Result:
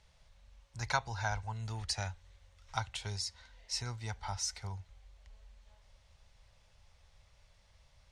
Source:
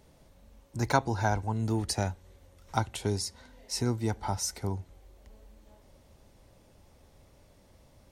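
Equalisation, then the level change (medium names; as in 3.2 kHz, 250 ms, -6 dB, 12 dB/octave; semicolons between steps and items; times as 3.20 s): distance through air 98 m; amplifier tone stack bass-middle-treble 10-0-10; +4.0 dB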